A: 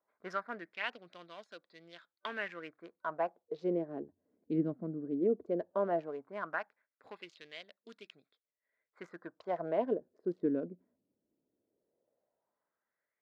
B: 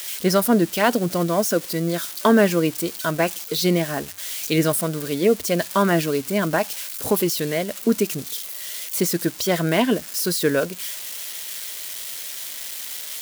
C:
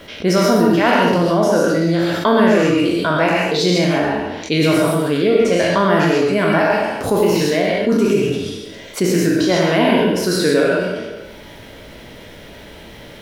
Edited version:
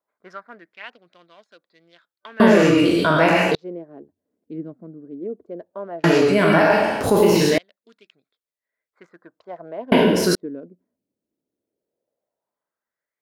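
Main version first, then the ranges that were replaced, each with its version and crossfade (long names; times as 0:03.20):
A
0:02.40–0:03.55: punch in from C
0:06.04–0:07.58: punch in from C
0:09.92–0:10.35: punch in from C
not used: B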